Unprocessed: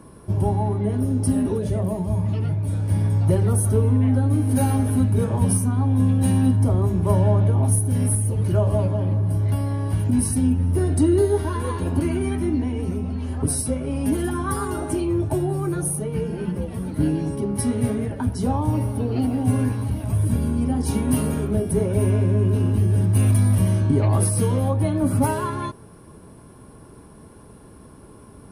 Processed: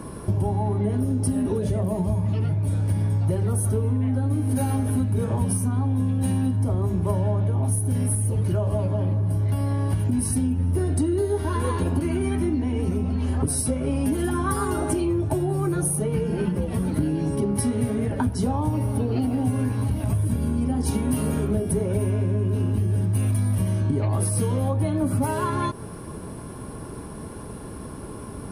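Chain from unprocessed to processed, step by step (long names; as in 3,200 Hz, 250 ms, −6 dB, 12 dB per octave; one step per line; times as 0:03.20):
downward compressor, threshold −30 dBFS, peak gain reduction 15.5 dB
level +9 dB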